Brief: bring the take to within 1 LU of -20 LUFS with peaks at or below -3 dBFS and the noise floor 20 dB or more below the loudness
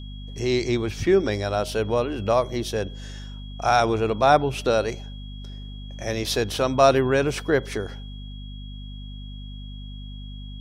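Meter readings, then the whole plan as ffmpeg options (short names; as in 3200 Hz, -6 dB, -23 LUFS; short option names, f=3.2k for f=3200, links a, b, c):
hum 50 Hz; harmonics up to 250 Hz; hum level -34 dBFS; steady tone 3300 Hz; tone level -46 dBFS; loudness -23.0 LUFS; peak -3.5 dBFS; loudness target -20.0 LUFS
-> -af "bandreject=f=50:t=h:w=4,bandreject=f=100:t=h:w=4,bandreject=f=150:t=h:w=4,bandreject=f=200:t=h:w=4,bandreject=f=250:t=h:w=4"
-af "bandreject=f=3.3k:w=30"
-af "volume=3dB,alimiter=limit=-3dB:level=0:latency=1"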